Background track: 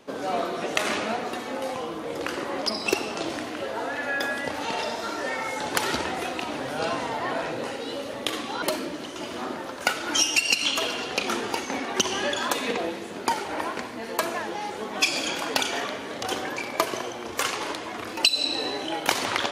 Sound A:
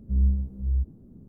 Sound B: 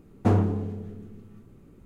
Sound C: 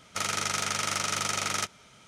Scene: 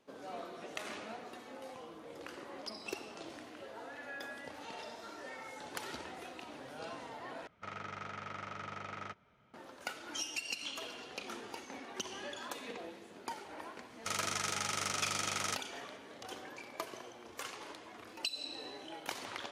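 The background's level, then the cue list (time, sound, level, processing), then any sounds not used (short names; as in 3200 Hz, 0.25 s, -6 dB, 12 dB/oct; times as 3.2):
background track -17.5 dB
7.47 replace with C -10.5 dB + LPF 1800 Hz
13.9 add C -7 dB
not used: A, B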